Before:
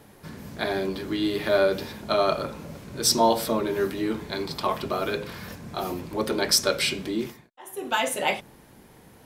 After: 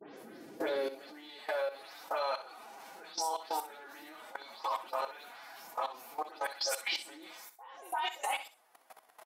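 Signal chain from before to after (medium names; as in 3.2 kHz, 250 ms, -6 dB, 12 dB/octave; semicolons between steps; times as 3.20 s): delay that grows with frequency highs late, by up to 172 ms; compression 2:1, threshold -39 dBFS, peak gain reduction 13 dB; formant-preserving pitch shift +6 st; high-pass sweep 360 Hz -> 830 Hz, 0.62–1.28 s; level held to a coarse grid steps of 18 dB; on a send: feedback delay 63 ms, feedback 22%, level -12 dB; on the sum: trim +3 dB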